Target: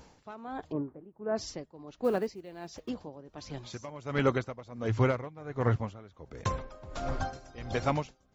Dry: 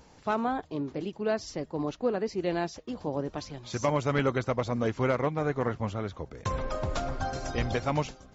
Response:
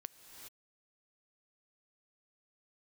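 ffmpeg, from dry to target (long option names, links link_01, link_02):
-filter_complex "[0:a]asplit=3[link_01][link_02][link_03];[link_01]afade=type=out:start_time=0.71:duration=0.02[link_04];[link_02]lowpass=frequency=1500:width=0.5412,lowpass=frequency=1500:width=1.3066,afade=type=in:start_time=0.71:duration=0.02,afade=type=out:start_time=1.35:duration=0.02[link_05];[link_03]afade=type=in:start_time=1.35:duration=0.02[link_06];[link_04][link_05][link_06]amix=inputs=3:normalize=0,asettb=1/sr,asplit=3[link_07][link_08][link_09];[link_07]atrim=end=2.044[link_10];[link_08]atrim=start=2.04:end=2.89,asetpts=PTS-STARTPTS,afade=type=in:duration=0.004:curve=qsin,afade=type=out:start_time=0.846:duration=0.004:curve=qsin,acrusher=bits=8:mode=log:mix=0:aa=0.000001[link_11];[link_09]atrim=start=2.886[link_12];[link_10][link_11]acrossfade=duration=0.004:curve1=hsin:curve2=qsin[link_13];[link_13][link_12]acrossfade=duration=0.004:curve1=qsin:curve2=hsin,asettb=1/sr,asplit=3[link_14][link_15][link_16];[link_14]atrim=end=4.884[link_17];[link_15]atrim=start=4.88:end=5.76,asetpts=PTS-STARTPTS,afade=type=in:duration=0.004:curve=qsin,afade=type=out:start_time=0.876:duration=0.004:curve=qsin,equalizer=frequency=110:width=5.5:gain=12[link_18];[link_16]atrim=start=5.756[link_19];[link_17][link_18]acrossfade=duration=0.004:curve1=hsin:curve2=qsin[link_20];[link_20][link_19]acrossfade=duration=0.004:curve1=qsin:curve2=hsin,aeval=exprs='val(0)*pow(10,-19*(0.5-0.5*cos(2*PI*1.4*n/s))/20)':channel_layout=same,volume=1.5dB"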